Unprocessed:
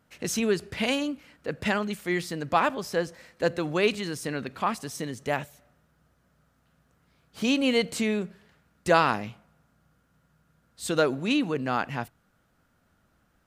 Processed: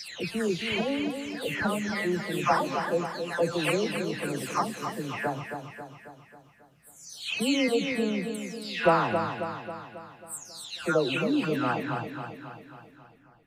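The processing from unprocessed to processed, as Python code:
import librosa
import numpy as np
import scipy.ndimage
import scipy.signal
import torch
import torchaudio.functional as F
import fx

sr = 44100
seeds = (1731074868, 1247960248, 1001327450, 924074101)

y = fx.spec_delay(x, sr, highs='early', ms=518)
y = fx.echo_feedback(y, sr, ms=271, feedback_pct=55, wet_db=-7)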